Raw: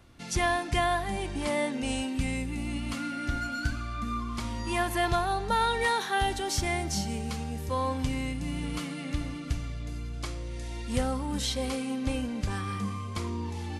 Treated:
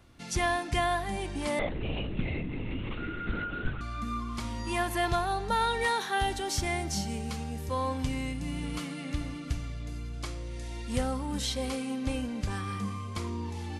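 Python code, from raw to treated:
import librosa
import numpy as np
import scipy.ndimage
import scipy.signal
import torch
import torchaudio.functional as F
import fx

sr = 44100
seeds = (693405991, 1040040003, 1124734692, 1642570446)

y = fx.lpc_vocoder(x, sr, seeds[0], excitation='whisper', order=10, at=(1.59, 3.81))
y = y * 10.0 ** (-1.5 / 20.0)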